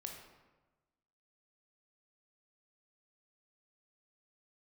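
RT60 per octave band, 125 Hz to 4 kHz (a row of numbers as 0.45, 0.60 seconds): 1.4, 1.3, 1.2, 1.2, 1.0, 0.75 seconds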